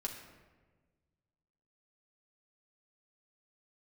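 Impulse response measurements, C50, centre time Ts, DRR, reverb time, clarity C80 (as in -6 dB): 6.0 dB, 33 ms, -1.0 dB, 1.4 s, 8.0 dB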